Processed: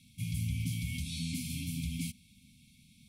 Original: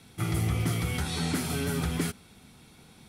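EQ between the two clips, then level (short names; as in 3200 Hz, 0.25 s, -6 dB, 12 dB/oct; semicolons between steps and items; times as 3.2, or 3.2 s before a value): brick-wall FIR band-stop 280–2100 Hz; -6.0 dB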